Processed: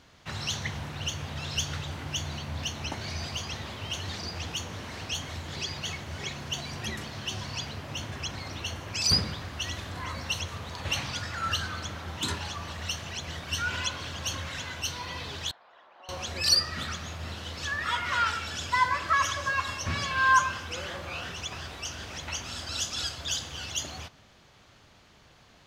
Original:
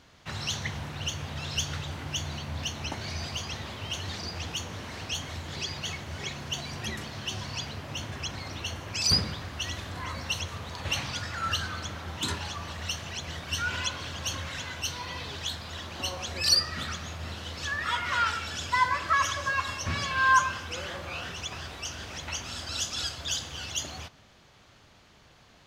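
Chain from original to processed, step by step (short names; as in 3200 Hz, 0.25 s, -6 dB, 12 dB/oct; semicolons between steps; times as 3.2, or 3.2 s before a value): 15.51–16.09 ladder band-pass 930 Hz, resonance 25%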